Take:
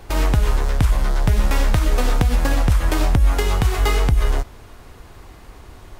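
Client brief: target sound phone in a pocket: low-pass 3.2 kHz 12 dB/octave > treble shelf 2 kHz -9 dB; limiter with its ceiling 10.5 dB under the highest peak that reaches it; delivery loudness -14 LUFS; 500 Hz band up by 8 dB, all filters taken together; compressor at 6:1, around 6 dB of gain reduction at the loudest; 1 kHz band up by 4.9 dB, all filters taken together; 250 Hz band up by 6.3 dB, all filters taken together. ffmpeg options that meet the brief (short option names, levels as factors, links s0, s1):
-af "equalizer=f=250:t=o:g=6,equalizer=f=500:t=o:g=7.5,equalizer=f=1000:t=o:g=5.5,acompressor=threshold=0.158:ratio=6,alimiter=limit=0.133:level=0:latency=1,lowpass=3200,highshelf=f=2000:g=-9,volume=5.31"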